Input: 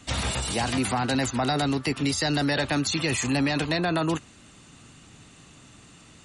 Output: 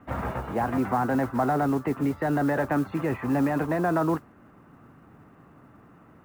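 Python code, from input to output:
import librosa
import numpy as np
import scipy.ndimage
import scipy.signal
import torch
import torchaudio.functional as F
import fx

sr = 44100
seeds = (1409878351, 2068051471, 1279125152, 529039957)

y = scipy.signal.sosfilt(scipy.signal.butter(4, 1500.0, 'lowpass', fs=sr, output='sos'), x)
y = fx.low_shelf(y, sr, hz=110.0, db=-10.5)
y = fx.mod_noise(y, sr, seeds[0], snr_db=28)
y = y * librosa.db_to_amplitude(2.5)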